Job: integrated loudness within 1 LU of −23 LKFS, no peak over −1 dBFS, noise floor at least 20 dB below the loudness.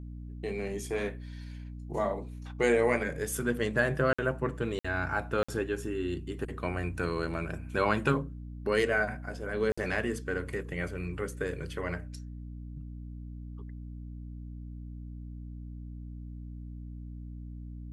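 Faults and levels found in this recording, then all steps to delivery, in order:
number of dropouts 4; longest dropout 55 ms; mains hum 60 Hz; hum harmonics up to 300 Hz; level of the hum −39 dBFS; integrated loudness −31.5 LKFS; sample peak −12.5 dBFS; target loudness −23.0 LKFS
→ repair the gap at 0:04.13/0:04.79/0:05.43/0:09.72, 55 ms
hum removal 60 Hz, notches 5
level +8.5 dB

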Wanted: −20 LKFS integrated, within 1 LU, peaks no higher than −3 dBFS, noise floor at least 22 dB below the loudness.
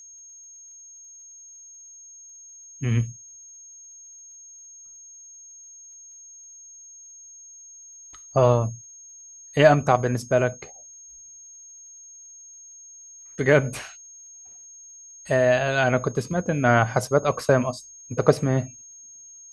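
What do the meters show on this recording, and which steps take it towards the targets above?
crackle rate 27 per second; interfering tone 6,500 Hz; level of the tone −43 dBFS; integrated loudness −22.0 LKFS; sample peak −2.5 dBFS; target loudness −20.0 LKFS
→ click removal
notch filter 6,500 Hz, Q 30
level +2 dB
brickwall limiter −3 dBFS

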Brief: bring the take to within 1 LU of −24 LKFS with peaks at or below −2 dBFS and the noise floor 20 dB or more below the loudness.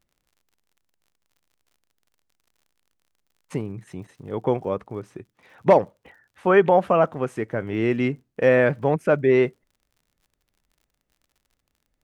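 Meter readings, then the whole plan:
crackle rate 53 per second; integrated loudness −21.5 LKFS; sample peak −4.5 dBFS; target loudness −24.0 LKFS
→ click removal
level −2.5 dB

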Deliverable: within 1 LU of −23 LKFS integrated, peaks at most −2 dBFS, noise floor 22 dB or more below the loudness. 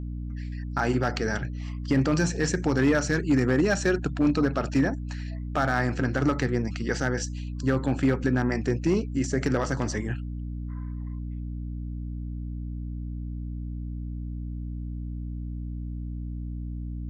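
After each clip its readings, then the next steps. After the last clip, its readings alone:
share of clipped samples 0.6%; peaks flattened at −15.5 dBFS; mains hum 60 Hz; hum harmonics up to 300 Hz; level of the hum −31 dBFS; integrated loudness −28.0 LKFS; sample peak −15.5 dBFS; target loudness −23.0 LKFS
→ clipped peaks rebuilt −15.5 dBFS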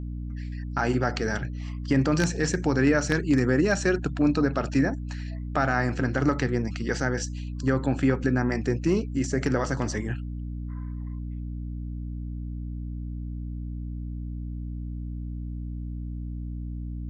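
share of clipped samples 0.0%; mains hum 60 Hz; hum harmonics up to 300 Hz; level of the hum −31 dBFS
→ hum removal 60 Hz, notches 5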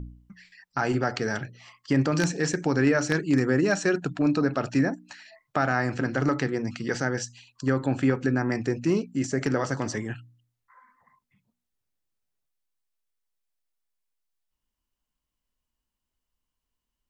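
mains hum none found; integrated loudness −26.0 LKFS; sample peak −7.0 dBFS; target loudness −23.0 LKFS
→ level +3 dB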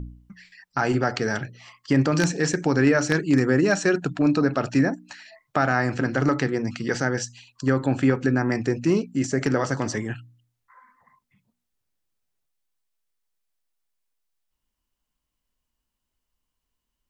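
integrated loudness −23.0 LKFS; sample peak −4.0 dBFS; background noise floor −81 dBFS

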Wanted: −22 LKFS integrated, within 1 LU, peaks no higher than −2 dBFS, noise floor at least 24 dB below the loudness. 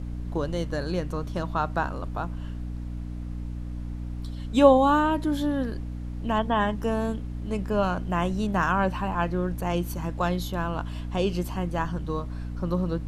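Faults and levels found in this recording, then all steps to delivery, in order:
mains hum 60 Hz; hum harmonics up to 300 Hz; level of the hum −31 dBFS; background noise floor −34 dBFS; target noise floor −52 dBFS; integrated loudness −27.5 LKFS; sample peak −4.5 dBFS; target loudness −22.0 LKFS
→ hum removal 60 Hz, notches 5
noise reduction from a noise print 18 dB
level +5.5 dB
brickwall limiter −2 dBFS

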